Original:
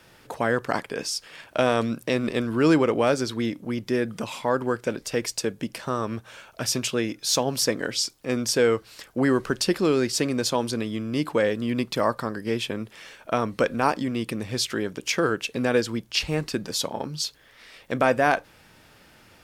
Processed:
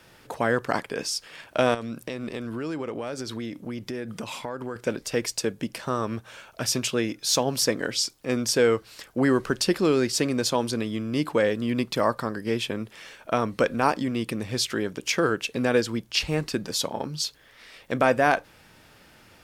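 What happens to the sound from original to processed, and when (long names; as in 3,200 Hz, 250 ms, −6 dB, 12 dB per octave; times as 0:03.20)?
0:01.74–0:04.76: downward compressor 5 to 1, threshold −29 dBFS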